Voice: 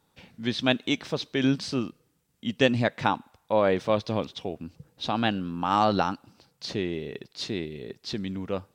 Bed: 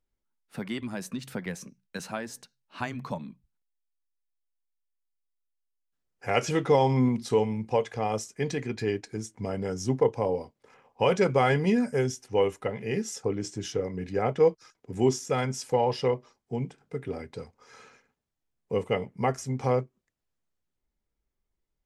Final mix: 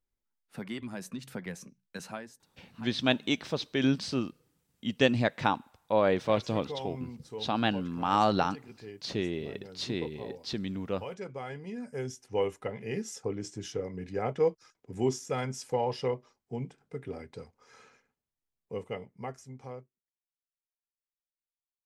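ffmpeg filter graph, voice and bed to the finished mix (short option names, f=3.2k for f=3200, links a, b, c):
-filter_complex "[0:a]adelay=2400,volume=-2.5dB[a];[1:a]volume=7.5dB,afade=t=out:st=2.11:d=0.26:silence=0.237137,afade=t=in:st=11.71:d=0.66:silence=0.251189,afade=t=out:st=17.81:d=2.39:silence=0.0334965[b];[a][b]amix=inputs=2:normalize=0"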